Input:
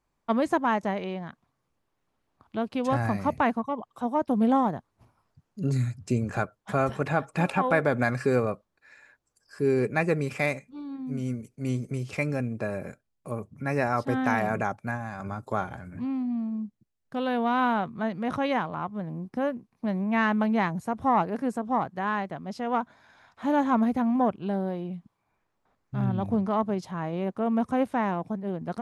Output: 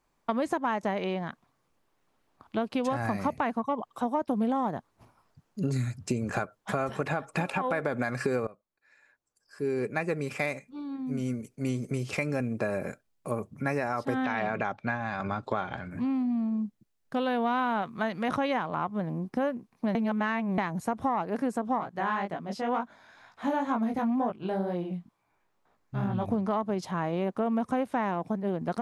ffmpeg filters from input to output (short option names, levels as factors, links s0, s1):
-filter_complex "[0:a]asettb=1/sr,asplit=3[s0][s1][s2];[s0]atrim=end=14.244[s3];[s1]atrim=start=14.24:end=15.91,asetpts=PTS-STARTPTS,afade=t=in:d=0.004:c=qsin,afade=t=out:st=1.666:d=0.004:c=qsin,lowpass=f=3600:t=q:w=2.2[s4];[s2]atrim=start=15.906[s5];[s3][s4]acrossfade=d=0.004:c1=hsin:c2=qsin[s6];[s6][s5]acrossfade=d=0.004:c1=qsin:c2=hsin,asettb=1/sr,asplit=3[s7][s8][s9];[s7]atrim=end=17.824[s10];[s8]atrim=start=17.82:end=18.29,asetpts=PTS-STARTPTS,afade=t=in:d=0.004:c=qsin,afade=t=out:st=0.466:d=0.004:c=qsin,tiltshelf=f=970:g=-4[s11];[s9]atrim=start=18.286[s12];[s10][s11]acrossfade=d=0.004:c1=hsin:c2=qsin[s13];[s13][s12]acrossfade=d=0.004:c1=qsin:c2=hsin,asplit=3[s14][s15][s16];[s14]afade=t=out:st=21.78:d=0.02[s17];[s15]flanger=delay=17:depth=5.6:speed=2.1,afade=t=in:st=21.78:d=0.02,afade=t=out:st=26.26:d=0.02[s18];[s16]afade=t=in:st=26.26:d=0.02[s19];[s17][s18][s19]amix=inputs=3:normalize=0,asplit=4[s20][s21][s22][s23];[s20]atrim=end=8.47,asetpts=PTS-STARTPTS,afade=t=out:st=8.466:d=0.004:c=hsin:silence=0.0891251[s24];[s21]atrim=start=8.47:end=19.952,asetpts=PTS-STARTPTS,afade=t=in:d=3.57:silence=0.0891251[s25];[s22]atrim=start=19.948:end=20.582,asetpts=PTS-STARTPTS,areverse[s26];[s23]atrim=start=20.578[s27];[s24][s25]concat=n=2:v=0:a=1[s28];[s28][s26]acrossfade=d=0.004:c1=hsin:c2=hsin[s29];[s29][s27]acrossfade=d=0.004:c1=hsin:c2=hsin,equalizer=f=73:t=o:w=2.4:g=-6.5,alimiter=limit=0.141:level=0:latency=1:release=209,acompressor=threshold=0.0316:ratio=6,volume=1.78"